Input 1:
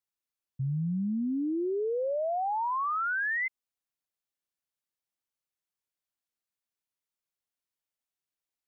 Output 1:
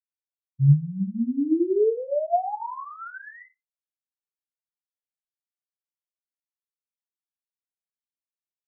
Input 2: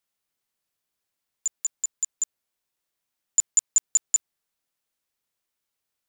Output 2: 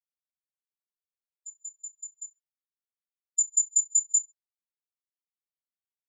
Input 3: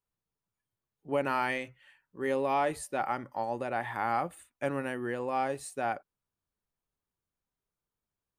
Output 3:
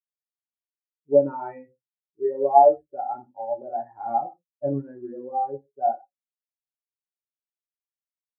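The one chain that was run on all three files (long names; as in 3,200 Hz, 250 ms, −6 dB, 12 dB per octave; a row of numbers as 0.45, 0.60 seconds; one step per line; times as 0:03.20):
high-shelf EQ 5,400 Hz +5.5 dB
reverb whose tail is shaped and stops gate 180 ms falling, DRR 0 dB
low-pass that shuts in the quiet parts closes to 600 Hz, open at −21.5 dBFS
tilt shelving filter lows +6.5 dB, about 1,500 Hz
every bin expanded away from the loudest bin 2.5 to 1
loudness normalisation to −24 LKFS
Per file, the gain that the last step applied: +4.5, −2.5, +6.0 decibels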